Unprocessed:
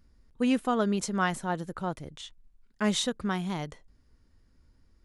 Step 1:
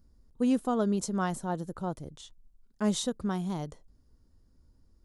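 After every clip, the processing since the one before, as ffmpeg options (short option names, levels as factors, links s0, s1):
-af "equalizer=f=2200:t=o:w=1.5:g=-12.5"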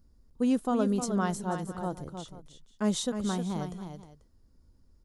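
-af "aecho=1:1:310|489:0.398|0.126"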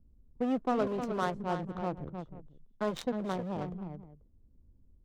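-filter_complex "[0:a]acrossover=split=240[s0][s1];[s0]aeval=exprs='0.0141*(abs(mod(val(0)/0.0141+3,4)-2)-1)':c=same[s2];[s1]adynamicsmooth=sensitivity=5.5:basefreq=560[s3];[s2][s3]amix=inputs=2:normalize=0"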